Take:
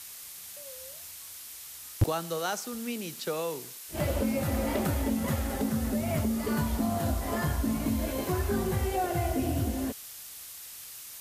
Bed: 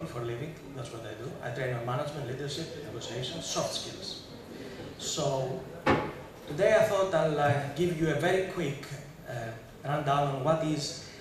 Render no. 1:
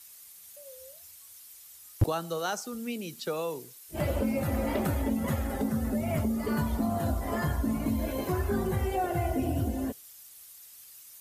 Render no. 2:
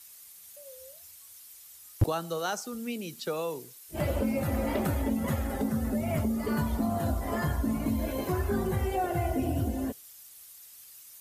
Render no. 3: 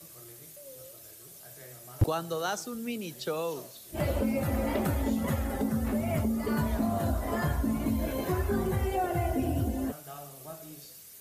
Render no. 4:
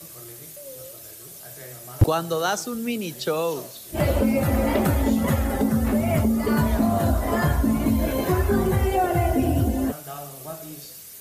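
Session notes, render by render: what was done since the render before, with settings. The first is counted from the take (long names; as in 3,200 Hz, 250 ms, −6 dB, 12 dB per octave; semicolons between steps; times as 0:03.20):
broadband denoise 11 dB, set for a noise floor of −45 dBFS
no processing that can be heard
mix in bed −18 dB
level +8 dB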